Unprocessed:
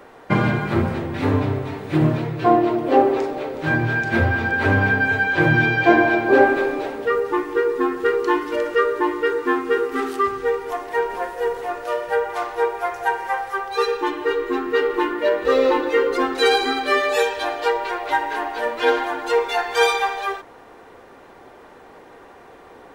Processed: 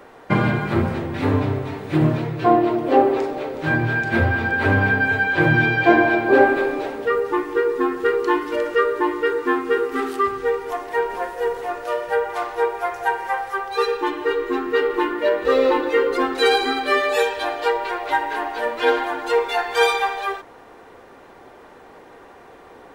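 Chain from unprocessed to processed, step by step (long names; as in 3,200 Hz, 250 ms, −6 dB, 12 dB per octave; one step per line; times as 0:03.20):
dynamic equaliser 6,000 Hz, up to −4 dB, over −47 dBFS, Q 2.8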